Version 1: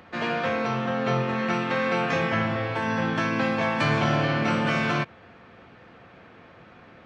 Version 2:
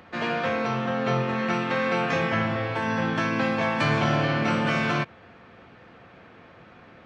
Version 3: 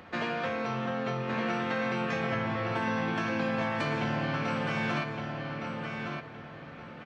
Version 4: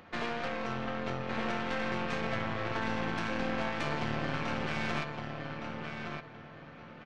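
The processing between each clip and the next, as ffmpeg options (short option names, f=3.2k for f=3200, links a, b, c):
-af anull
-filter_complex "[0:a]acompressor=threshold=-29dB:ratio=6,asplit=2[a][b];[b]adelay=1164,lowpass=f=4.8k:p=1,volume=-4.5dB,asplit=2[c][d];[d]adelay=1164,lowpass=f=4.8k:p=1,volume=0.29,asplit=2[e][f];[f]adelay=1164,lowpass=f=4.8k:p=1,volume=0.29,asplit=2[g][h];[h]adelay=1164,lowpass=f=4.8k:p=1,volume=0.29[i];[a][c][e][g][i]amix=inputs=5:normalize=0"
-af "aresample=16000,aresample=44100,aeval=exprs='0.141*(cos(1*acos(clip(val(0)/0.141,-1,1)))-cos(1*PI/2))+0.0316*(cos(4*acos(clip(val(0)/0.141,-1,1)))-cos(4*PI/2))+0.00631*(cos(8*acos(clip(val(0)/0.141,-1,1)))-cos(8*PI/2))':c=same,volume=-4.5dB"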